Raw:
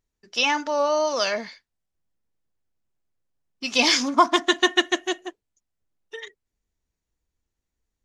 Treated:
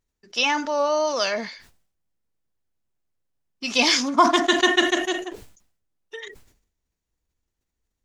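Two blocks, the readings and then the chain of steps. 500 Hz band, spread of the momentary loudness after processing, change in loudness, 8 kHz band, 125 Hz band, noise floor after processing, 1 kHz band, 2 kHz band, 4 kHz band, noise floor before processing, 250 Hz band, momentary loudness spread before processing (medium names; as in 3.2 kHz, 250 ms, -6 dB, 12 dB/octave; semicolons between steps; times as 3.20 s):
+1.0 dB, 19 LU, +1.0 dB, +0.5 dB, no reading, -81 dBFS, +1.0 dB, +1.5 dB, +0.5 dB, -84 dBFS, +2.0 dB, 21 LU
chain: decay stretcher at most 91 dB/s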